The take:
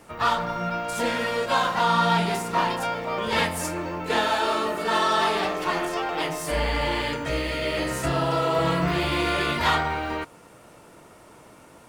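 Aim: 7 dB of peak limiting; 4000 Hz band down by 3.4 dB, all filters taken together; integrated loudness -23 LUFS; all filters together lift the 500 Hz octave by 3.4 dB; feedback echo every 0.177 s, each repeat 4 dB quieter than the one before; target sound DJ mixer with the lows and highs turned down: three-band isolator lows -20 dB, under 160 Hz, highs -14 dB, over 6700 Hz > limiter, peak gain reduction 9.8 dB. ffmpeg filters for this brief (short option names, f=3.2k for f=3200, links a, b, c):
-filter_complex "[0:a]equalizer=f=500:t=o:g=4.5,equalizer=f=4k:t=o:g=-4,alimiter=limit=-16dB:level=0:latency=1,acrossover=split=160 6700:gain=0.1 1 0.2[a][b][c];[a][b][c]amix=inputs=3:normalize=0,aecho=1:1:177|354|531|708|885|1062|1239|1416|1593:0.631|0.398|0.25|0.158|0.0994|0.0626|0.0394|0.0249|0.0157,volume=6dB,alimiter=limit=-14.5dB:level=0:latency=1"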